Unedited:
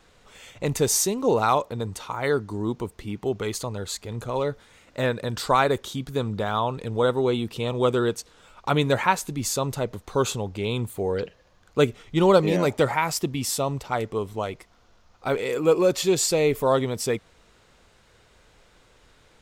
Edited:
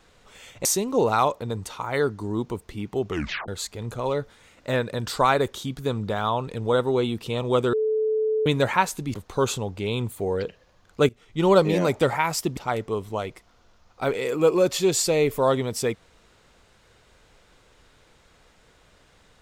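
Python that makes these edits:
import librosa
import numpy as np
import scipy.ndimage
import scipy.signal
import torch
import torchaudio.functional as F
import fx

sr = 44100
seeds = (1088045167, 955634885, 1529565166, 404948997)

y = fx.edit(x, sr, fx.cut(start_s=0.65, length_s=0.3),
    fx.tape_stop(start_s=3.39, length_s=0.39),
    fx.bleep(start_s=8.03, length_s=0.73, hz=435.0, db=-20.0),
    fx.cut(start_s=9.44, length_s=0.48),
    fx.fade_in_from(start_s=11.87, length_s=0.43, floor_db=-18.5),
    fx.cut(start_s=13.35, length_s=0.46), tone=tone)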